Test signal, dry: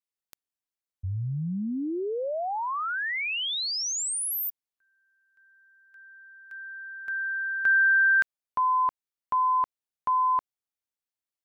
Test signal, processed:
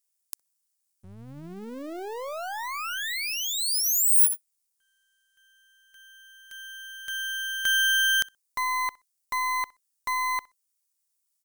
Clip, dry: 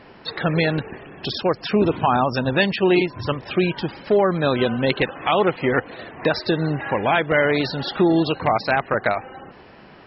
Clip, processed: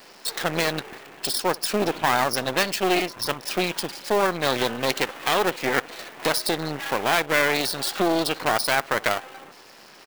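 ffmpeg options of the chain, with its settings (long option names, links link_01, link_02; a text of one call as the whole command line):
ffmpeg -i in.wav -filter_complex "[0:a]aresample=22050,aresample=44100,asplit=2[link_01][link_02];[link_02]adelay=63,lowpass=frequency=1100:poles=1,volume=-21dB,asplit=2[link_03][link_04];[link_04]adelay=63,lowpass=frequency=1100:poles=1,volume=0.24[link_05];[link_03][link_05]amix=inputs=2:normalize=0[link_06];[link_01][link_06]amix=inputs=2:normalize=0,aexciter=amount=2.6:drive=6.4:freq=4700,acrossover=split=2000[link_07][link_08];[link_08]acompressor=threshold=-36dB:ratio=8:attack=87:release=30:detection=rms[link_09];[link_07][link_09]amix=inputs=2:normalize=0,highpass=55,equalizer=frequency=300:width=0.42:gain=3,aeval=exprs='max(val(0),0)':channel_layout=same,aemphasis=mode=production:type=riaa" out.wav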